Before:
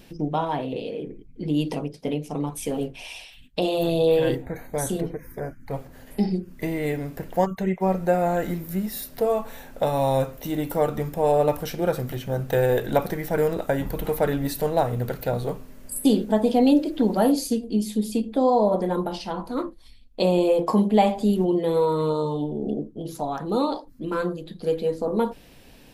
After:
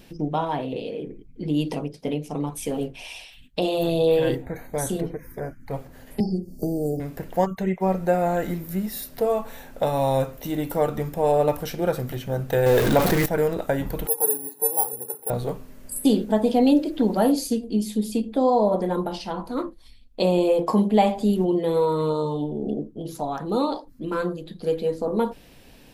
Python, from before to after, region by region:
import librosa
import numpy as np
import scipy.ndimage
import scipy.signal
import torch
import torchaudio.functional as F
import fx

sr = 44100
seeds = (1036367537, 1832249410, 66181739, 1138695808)

y = fx.chain(x, sr, fx.brickwall_bandstop(low_hz=830.0, high_hz=4300.0),
    fx.band_squash(depth_pct=70), at=(6.2, 7.0))
y = fx.chain(y, sr, fx.zero_step(step_db=-25.5),
    fx.env_flatten(amount_pct=50), at=(12.66, 13.26))
y = fx.chain(y, sr, fx.double_bandpass(hz=600.0, octaves=0.95),
    fx.resample_bad(factor=4, down='filtered', up='zero_stuff'), at=(14.07, 15.3))